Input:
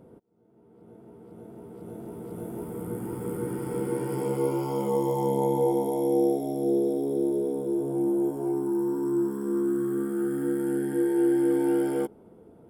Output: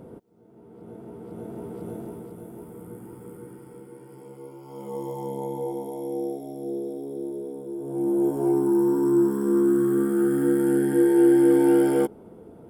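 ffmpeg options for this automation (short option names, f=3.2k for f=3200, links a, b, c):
-af "volume=30dB,afade=t=out:st=1.65:d=0.71:silence=0.237137,afade=t=out:st=2.36:d=1.52:silence=0.266073,afade=t=in:st=4.61:d=0.41:silence=0.334965,afade=t=in:st=7.78:d=0.67:silence=0.237137"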